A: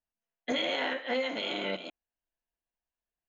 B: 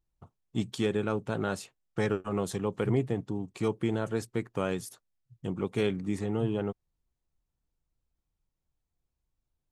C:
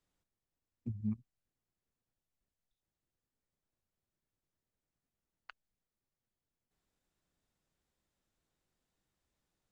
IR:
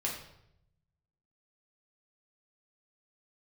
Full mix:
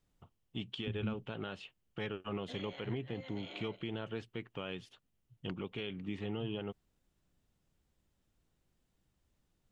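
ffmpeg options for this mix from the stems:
-filter_complex "[0:a]adelay=2000,volume=-6dB[a];[1:a]lowpass=f=3k:t=q:w=5.8,volume=-7dB,asplit=2[b][c];[2:a]lowshelf=f=310:g=10,acrossover=split=400|3000[d][e][f];[d]acompressor=threshold=-30dB:ratio=6[g];[g][e][f]amix=inputs=3:normalize=0,volume=1.5dB[h];[c]apad=whole_len=232958[i];[a][i]sidechaincompress=threshold=-44dB:ratio=6:attack=28:release=987[j];[j][b][h]amix=inputs=3:normalize=0,alimiter=level_in=4dB:limit=-24dB:level=0:latency=1:release=150,volume=-4dB"

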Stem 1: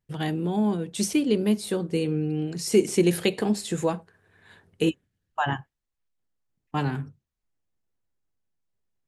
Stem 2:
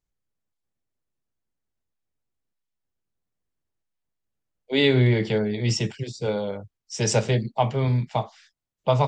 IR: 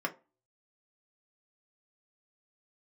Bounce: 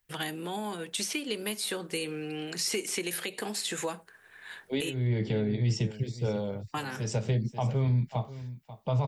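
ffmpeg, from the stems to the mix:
-filter_complex "[0:a]equalizer=f=1.9k:w=0.46:g=11,acrossover=split=490|5500[a][b][c];[a]acompressor=threshold=-30dB:ratio=4[d];[b]acompressor=threshold=-34dB:ratio=4[e];[c]acompressor=threshold=-46dB:ratio=4[f];[d][e][f]amix=inputs=3:normalize=0,aemphasis=mode=production:type=bsi,volume=-2.5dB,asplit=3[g][h][i];[g]atrim=end=5.07,asetpts=PTS-STARTPTS,afade=t=out:st=5.066:d=0.004:c=hsin[j];[h]atrim=start=5.07:end=5.91,asetpts=PTS-STARTPTS,volume=0[k];[i]atrim=start=5.91,asetpts=PTS-STARTPTS,afade=t=in:d=0.004:c=hsin[l];[j][k][l]concat=n=3:v=0:a=1,asplit=2[m][n];[1:a]lowshelf=f=240:g=10.5,volume=-8dB,asplit=2[o][p];[p]volume=-17.5dB[q];[n]apad=whole_len=400261[r];[o][r]sidechaincompress=threshold=-44dB:ratio=8:attack=30:release=390[s];[q]aecho=0:1:539:1[t];[m][s][t]amix=inputs=3:normalize=0,alimiter=limit=-19.5dB:level=0:latency=1:release=93"

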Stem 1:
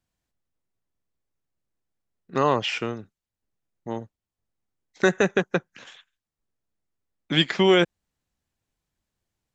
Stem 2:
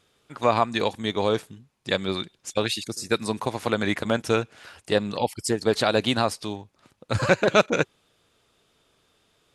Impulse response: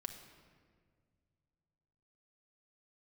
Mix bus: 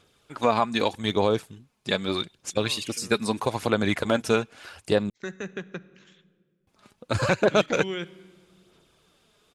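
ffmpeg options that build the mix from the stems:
-filter_complex "[0:a]equalizer=f=710:w=1.2:g=-9,adelay=200,volume=-13dB,afade=t=in:st=4.96:d=0.69:silence=0.473151,asplit=2[a][b];[b]volume=-5.5dB[c];[1:a]bandreject=f=1.9k:w=22,aphaser=in_gain=1:out_gain=1:delay=4.9:decay=0.38:speed=0.8:type=sinusoidal,volume=1dB,asplit=3[d][e][f];[d]atrim=end=5.1,asetpts=PTS-STARTPTS,afade=t=out:st=5.096:d=0.004:c=hsin[g];[e]atrim=start=5.1:end=6.67,asetpts=PTS-STARTPTS,volume=0[h];[f]atrim=start=6.67,asetpts=PTS-STARTPTS,afade=t=in:d=0.004:c=hsin[i];[g][h][i]concat=n=3:v=0:a=1[j];[2:a]atrim=start_sample=2205[k];[c][k]afir=irnorm=-1:irlink=0[l];[a][j][l]amix=inputs=3:normalize=0,alimiter=limit=-9dB:level=0:latency=1:release=289"

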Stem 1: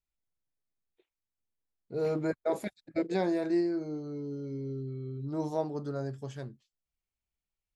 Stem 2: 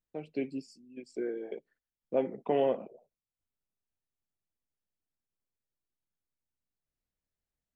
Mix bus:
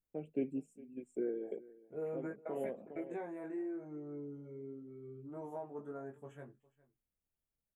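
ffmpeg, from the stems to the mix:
-filter_complex "[0:a]lowshelf=f=190:g=-10,acompressor=threshold=-32dB:ratio=6,flanger=delay=17.5:depth=3.2:speed=0.37,volume=-3.5dB,asplit=3[a][b][c];[b]volume=-22dB[d];[1:a]equalizer=f=1k:t=o:w=1:g=-7,equalizer=f=2k:t=o:w=1:g=-10,equalizer=f=4k:t=o:w=1:g=4,volume=-1dB,asplit=2[e][f];[f]volume=-20.5dB[g];[c]apad=whole_len=341922[h];[e][h]sidechaincompress=threshold=-51dB:ratio=8:attack=16:release=535[i];[d][g]amix=inputs=2:normalize=0,aecho=0:1:409:1[j];[a][i][j]amix=inputs=3:normalize=0,asuperstop=centerf=4700:order=4:qfactor=0.72"

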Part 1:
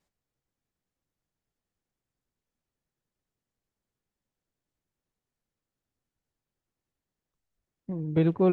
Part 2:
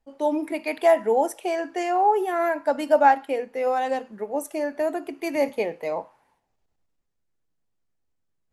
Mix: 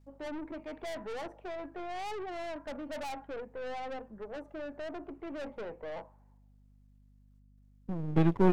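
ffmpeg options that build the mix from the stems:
-filter_complex "[0:a]aeval=exprs='if(lt(val(0),0),0.251*val(0),val(0))':c=same,volume=1.5dB[a];[1:a]lowpass=1.1k,aeval=exprs='(tanh(39.8*val(0)+0.35)-tanh(0.35))/39.8':c=same,volume=-5.5dB[b];[a][b]amix=inputs=2:normalize=0,aeval=exprs='val(0)+0.001*(sin(2*PI*50*n/s)+sin(2*PI*2*50*n/s)/2+sin(2*PI*3*50*n/s)/3+sin(2*PI*4*50*n/s)/4+sin(2*PI*5*50*n/s)/5)':c=same"

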